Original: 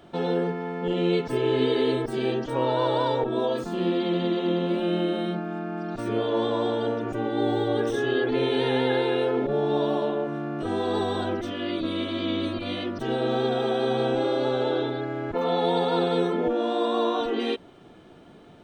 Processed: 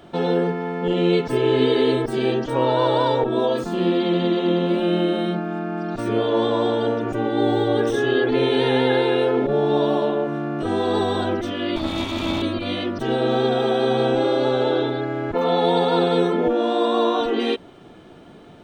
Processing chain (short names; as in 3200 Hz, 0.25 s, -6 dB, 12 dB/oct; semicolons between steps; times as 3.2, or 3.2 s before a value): 11.76–12.42 minimum comb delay 0.87 ms; gain +5 dB